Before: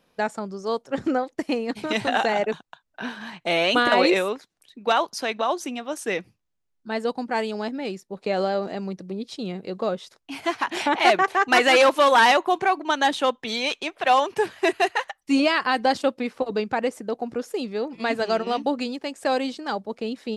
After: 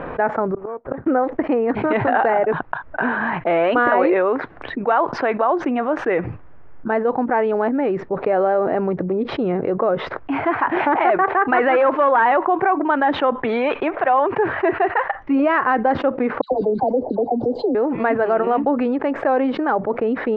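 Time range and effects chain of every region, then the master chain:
0.52–1.06 s: inverted gate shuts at -26 dBFS, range -36 dB + decimation joined by straight lines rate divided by 8×
16.41–17.75 s: elliptic band-stop 780–4200 Hz + treble shelf 5.3 kHz +7 dB + phase dispersion lows, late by 108 ms, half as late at 1.5 kHz
whole clip: low-pass 1.7 kHz 24 dB/octave; peaking EQ 200 Hz -10 dB 0.39 oct; level flattener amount 70%

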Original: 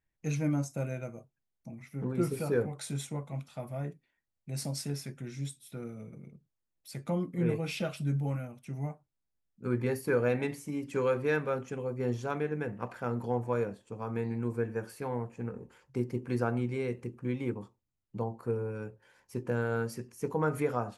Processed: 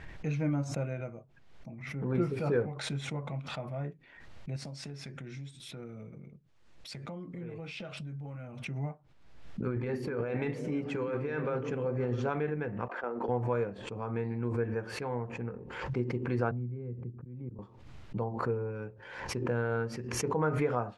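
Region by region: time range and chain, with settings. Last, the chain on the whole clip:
4.56–8.60 s: compression, threshold -38 dBFS + low-pass 9.9 kHz + treble shelf 5.7 kHz +9 dB
9.66–12.30 s: compressor with a negative ratio -32 dBFS + repeats whose band climbs or falls 131 ms, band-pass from 190 Hz, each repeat 0.7 oct, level -5.5 dB
12.88–13.29 s: high-pass 280 Hz 24 dB/octave + gate -40 dBFS, range -13 dB + treble shelf 2.5 kHz -11.5 dB
16.51–17.59 s: slow attack 306 ms + band-pass filter 120 Hz, Q 1.1 + three bands compressed up and down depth 40%
whole clip: low-pass 3.1 kHz 12 dB/octave; peaking EQ 240 Hz -2.5 dB; swell ahead of each attack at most 53 dB/s

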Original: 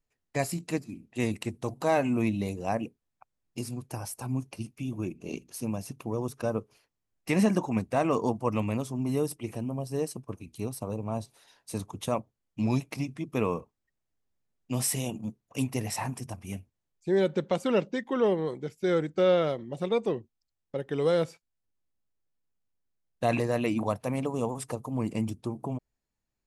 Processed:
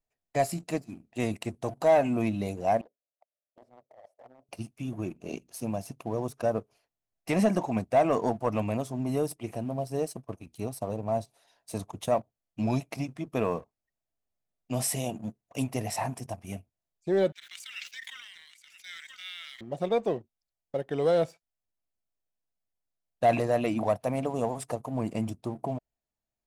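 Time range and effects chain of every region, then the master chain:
2.81–4.49 s: band-pass filter 570 Hz, Q 6.3 + compressor with a negative ratio -53 dBFS + loudspeaker Doppler distortion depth 0.75 ms
17.32–19.61 s: steep high-pass 1.9 kHz + delay 980 ms -12 dB + decay stretcher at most 25 dB/s
whole clip: peaking EQ 670 Hz +10.5 dB 0.45 oct; waveshaping leveller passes 1; trim -5 dB

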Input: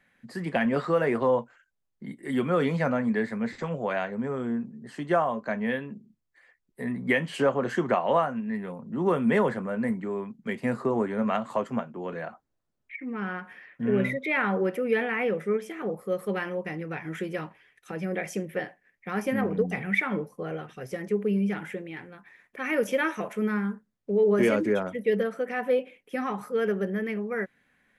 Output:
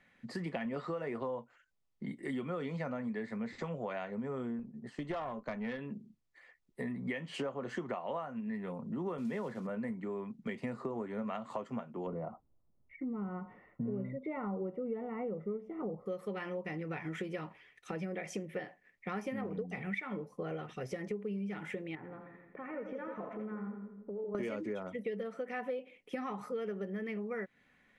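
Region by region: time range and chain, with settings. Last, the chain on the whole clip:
4.59–5.79 s: valve stage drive 21 dB, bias 0.5 + gate -47 dBFS, range -7 dB
9.18–9.69 s: block-companded coder 5-bit + high-pass 140 Hz + bass shelf 220 Hz +7 dB
12.07–16.06 s: Savitzky-Golay filter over 65 samples + bass shelf 190 Hz +10 dB
21.95–24.35 s: compression 3:1, threshold -41 dBFS + Chebyshev low-pass 1.1 kHz + two-band feedback delay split 540 Hz, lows 153 ms, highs 83 ms, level -5.5 dB
whole clip: low-pass 7.3 kHz 12 dB/octave; band-stop 1.6 kHz, Q 9.3; compression 6:1, threshold -36 dBFS

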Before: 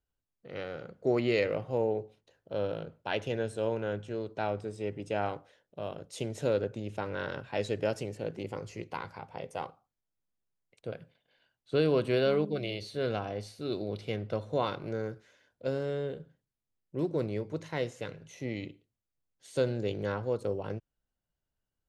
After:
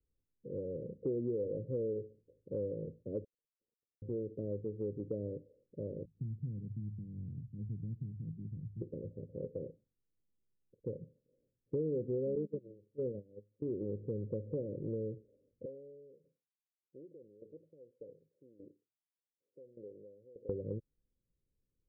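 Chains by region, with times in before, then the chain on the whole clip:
3.24–4.02 s: brick-wall FIR high-pass 920 Hz + treble shelf 6.8 kHz -10 dB + compressor with a negative ratio -49 dBFS, ratio -0.5
6.05–8.81 s: inverse Chebyshev low-pass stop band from 820 Hz, stop band 70 dB + hum notches 50/100 Hz
12.35–13.62 s: zero-crossing glitches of -28.5 dBFS + gate -32 dBFS, range -23 dB + high-pass 110 Hz
15.65–20.49 s: compression 4:1, threshold -34 dBFS + LFO band-pass saw up 1.7 Hz 760–3100 Hz
whole clip: steep low-pass 540 Hz 96 dB/octave; compression 3:1, threshold -40 dBFS; trim +3.5 dB

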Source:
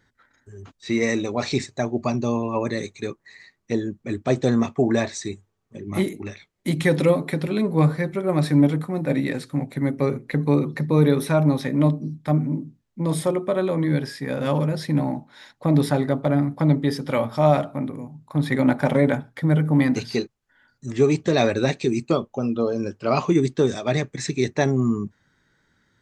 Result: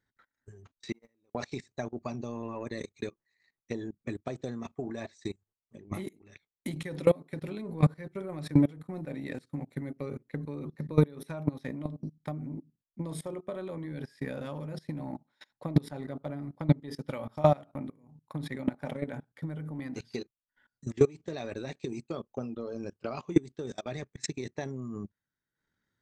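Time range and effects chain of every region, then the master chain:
0.92–1.35 s: block-companded coder 5-bit + gate -18 dBFS, range -32 dB + treble shelf 3.3 kHz -11 dB
whole clip: level held to a coarse grid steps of 15 dB; transient shaper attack +7 dB, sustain -9 dB; trim -8 dB

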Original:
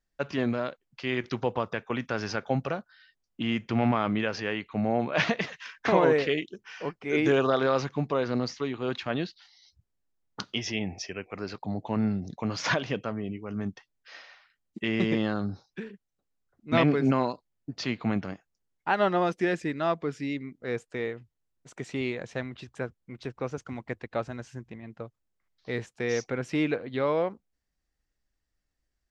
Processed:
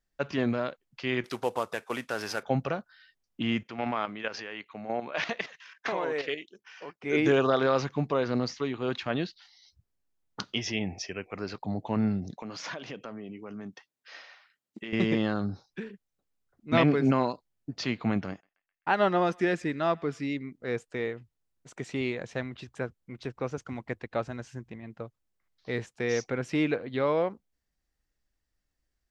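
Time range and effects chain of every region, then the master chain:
1.24–2.43 s: CVSD coder 64 kbps + tone controls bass -11 dB, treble +1 dB
3.63–7.03 s: high-pass 520 Hz 6 dB/octave + level held to a coarse grid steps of 10 dB
12.32–14.93 s: high-pass 180 Hz + compression 3:1, threshold -38 dBFS
18.30–20.27 s: gate -55 dBFS, range -19 dB + band-passed feedback delay 129 ms, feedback 62%, band-pass 2.2 kHz, level -24 dB
whole clip: none

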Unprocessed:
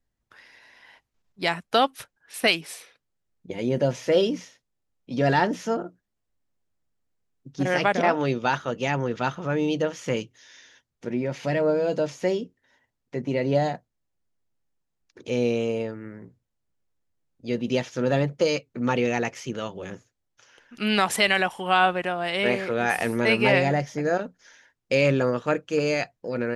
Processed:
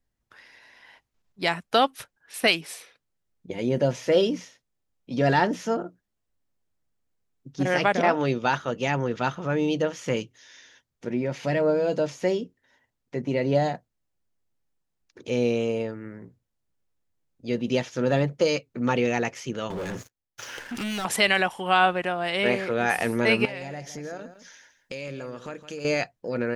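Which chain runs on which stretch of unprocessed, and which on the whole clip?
19.70–21.05 s: compression 3:1, threshold -43 dBFS + waveshaping leveller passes 5
23.45–25.85 s: treble shelf 4 kHz +8 dB + compression 4:1, threshold -35 dBFS + delay 163 ms -12.5 dB
whole clip: none

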